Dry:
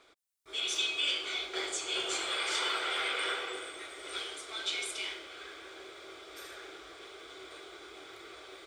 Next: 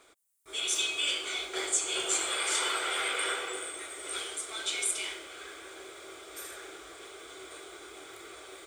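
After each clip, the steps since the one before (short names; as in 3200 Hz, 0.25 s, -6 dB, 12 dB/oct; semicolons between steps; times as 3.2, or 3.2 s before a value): resonant high shelf 6300 Hz +8 dB, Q 1.5; gain +2 dB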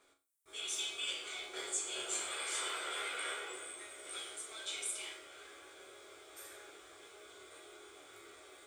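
resonator bank C#2 sus4, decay 0.32 s; gain +2.5 dB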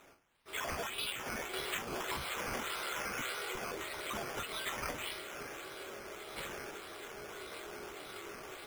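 decimation with a swept rate 9×, swing 60% 1.7 Hz; compressor 6:1, threshold -45 dBFS, peak gain reduction 12.5 dB; gain +9 dB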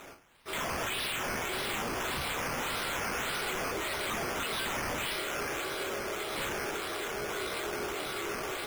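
in parallel at -2.5 dB: limiter -37.5 dBFS, peak gain reduction 10.5 dB; on the sum: wavefolder -36 dBFS; gain +7 dB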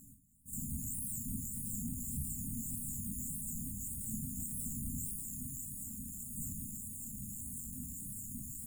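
flange 0.72 Hz, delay 7.9 ms, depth 5.6 ms, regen -64%; brick-wall FIR band-stop 270–6700 Hz; gain +6.5 dB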